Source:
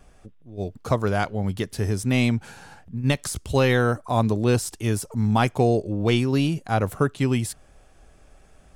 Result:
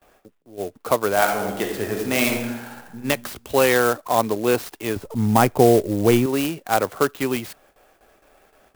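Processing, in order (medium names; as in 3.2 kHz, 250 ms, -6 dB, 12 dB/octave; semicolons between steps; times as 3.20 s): 4.96–6.26 s: RIAA curve playback; gate with hold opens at -43 dBFS; three-band isolator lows -19 dB, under 290 Hz, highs -17 dB, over 5.5 kHz; 1.12–3.03 s: reverb throw, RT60 1 s, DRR 1 dB; sampling jitter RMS 0.046 ms; trim +5 dB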